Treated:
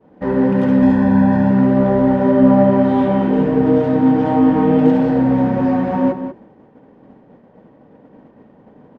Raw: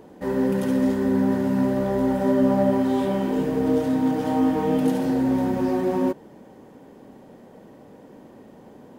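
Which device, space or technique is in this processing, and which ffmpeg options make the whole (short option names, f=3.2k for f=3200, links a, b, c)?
hearing-loss simulation: -filter_complex "[0:a]equalizer=f=150:t=o:w=0.77:g=2,bandreject=f=370:w=12,asettb=1/sr,asplit=3[a][b][c];[a]atrim=end=0.824[d];[b]atrim=start=0.82:end=1.51,asetpts=PTS-STARTPTS,afade=t=in:d=0.004:c=qsin,afade=t=out:st=0.686:d=0.004:c=qsin,aecho=1:1:1.2:0.68,atrim=end_sample=30429[e];[c]atrim=start=1.506[f];[d][e]acrossfade=d=0.004:c1=hsin:c2=qsin[g];[g][f]acrossfade=d=0.004:c1=qsin:c2=hsin,lowpass=2.3k,agate=range=-33dB:threshold=-39dB:ratio=3:detection=peak,asplit=2[h][i];[i]adelay=192.4,volume=-10dB,highshelf=f=4k:g=-4.33[j];[h][j]amix=inputs=2:normalize=0,volume=7.5dB"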